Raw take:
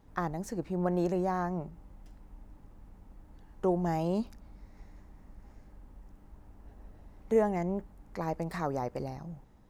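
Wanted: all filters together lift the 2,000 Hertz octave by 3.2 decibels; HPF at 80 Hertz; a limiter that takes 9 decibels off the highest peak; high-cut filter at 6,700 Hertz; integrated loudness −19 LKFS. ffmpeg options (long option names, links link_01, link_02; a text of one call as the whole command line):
ffmpeg -i in.wav -af "highpass=80,lowpass=6700,equalizer=frequency=2000:width_type=o:gain=4,volume=16.5dB,alimiter=limit=-7.5dB:level=0:latency=1" out.wav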